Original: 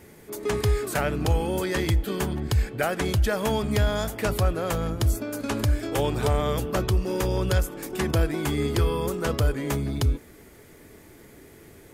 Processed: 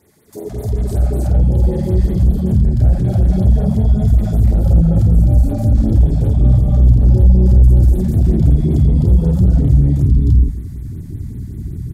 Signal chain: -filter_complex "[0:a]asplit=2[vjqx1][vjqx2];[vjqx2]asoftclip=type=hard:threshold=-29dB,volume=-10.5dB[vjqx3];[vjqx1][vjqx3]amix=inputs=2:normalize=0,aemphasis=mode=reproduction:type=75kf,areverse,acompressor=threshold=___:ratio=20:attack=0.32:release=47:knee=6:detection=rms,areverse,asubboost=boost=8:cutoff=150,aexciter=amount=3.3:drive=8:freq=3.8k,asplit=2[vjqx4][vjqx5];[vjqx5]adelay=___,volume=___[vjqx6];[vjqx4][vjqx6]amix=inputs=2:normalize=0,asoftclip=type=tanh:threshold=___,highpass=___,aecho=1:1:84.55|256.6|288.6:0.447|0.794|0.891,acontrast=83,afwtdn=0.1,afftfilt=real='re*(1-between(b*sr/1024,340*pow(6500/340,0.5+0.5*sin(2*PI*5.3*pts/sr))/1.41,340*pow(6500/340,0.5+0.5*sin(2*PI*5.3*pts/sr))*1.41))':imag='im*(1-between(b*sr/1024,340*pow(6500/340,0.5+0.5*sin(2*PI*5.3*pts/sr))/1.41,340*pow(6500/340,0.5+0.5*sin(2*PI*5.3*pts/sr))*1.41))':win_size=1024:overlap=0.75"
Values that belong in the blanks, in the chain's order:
-27dB, 49, -2dB, -10.5dB, 43